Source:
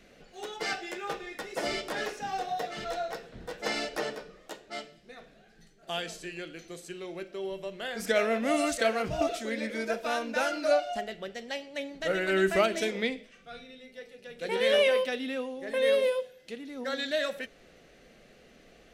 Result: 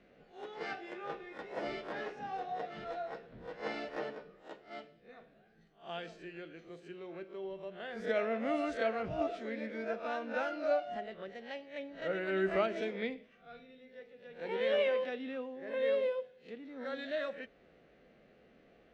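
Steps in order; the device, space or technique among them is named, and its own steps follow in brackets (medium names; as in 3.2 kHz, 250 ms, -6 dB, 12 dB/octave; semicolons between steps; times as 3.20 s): reverse spectral sustain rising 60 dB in 0.30 s; high-pass 77 Hz 6 dB/octave; phone in a pocket (low-pass 3.7 kHz 12 dB/octave; treble shelf 2.4 kHz -9 dB); trim -6 dB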